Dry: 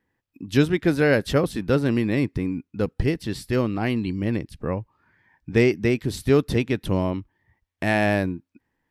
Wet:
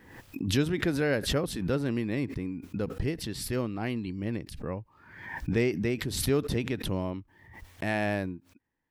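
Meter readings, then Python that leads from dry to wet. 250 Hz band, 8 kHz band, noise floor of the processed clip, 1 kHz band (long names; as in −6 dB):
−7.5 dB, +2.5 dB, −65 dBFS, −8.0 dB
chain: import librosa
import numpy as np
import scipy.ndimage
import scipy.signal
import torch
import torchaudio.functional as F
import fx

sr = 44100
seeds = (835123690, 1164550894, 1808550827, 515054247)

y = fx.pre_swell(x, sr, db_per_s=60.0)
y = y * 10.0 ** (-8.5 / 20.0)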